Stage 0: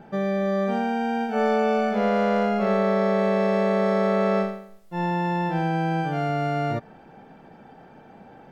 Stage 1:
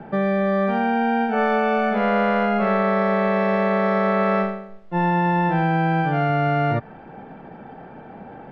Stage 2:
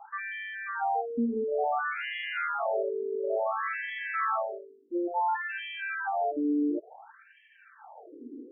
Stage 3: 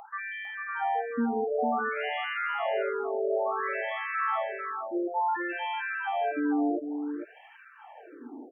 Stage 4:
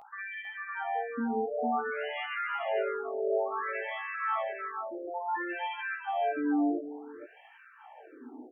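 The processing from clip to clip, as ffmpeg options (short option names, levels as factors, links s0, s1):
-filter_complex "[0:a]lowpass=2400,acrossover=split=140|900|1400[s0][s1][s2][s3];[s1]alimiter=level_in=1.06:limit=0.0631:level=0:latency=1:release=396,volume=0.944[s4];[s0][s4][s2][s3]amix=inputs=4:normalize=0,volume=2.51"
-af "equalizer=f=125:t=o:w=1:g=-8,equalizer=f=250:t=o:w=1:g=6,equalizer=f=500:t=o:w=1:g=-11,equalizer=f=1000:t=o:w=1:g=-4,equalizer=f=2000:t=o:w=1:g=-7,equalizer=f=4000:t=o:w=1:g=5,afftfilt=real='re*between(b*sr/1024,330*pow(2400/330,0.5+0.5*sin(2*PI*0.57*pts/sr))/1.41,330*pow(2400/330,0.5+0.5*sin(2*PI*0.57*pts/sr))*1.41)':imag='im*between(b*sr/1024,330*pow(2400/330,0.5+0.5*sin(2*PI*0.57*pts/sr))/1.41,330*pow(2400/330,0.5+0.5*sin(2*PI*0.57*pts/sr))*1.41)':win_size=1024:overlap=0.75,volume=1.58"
-af "acompressor=mode=upward:threshold=0.00398:ratio=2.5,aecho=1:1:450:0.473"
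-af "flanger=delay=15.5:depth=3.3:speed=0.49"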